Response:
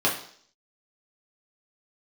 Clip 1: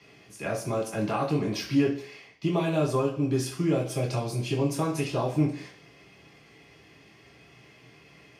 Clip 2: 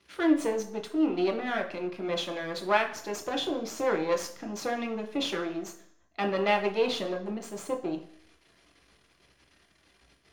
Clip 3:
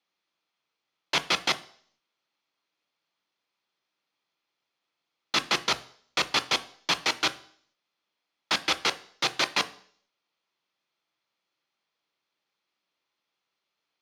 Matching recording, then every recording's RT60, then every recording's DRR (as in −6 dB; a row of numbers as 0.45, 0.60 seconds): 1; 0.55, 0.55, 0.55 seconds; −4.5, 2.0, 10.5 decibels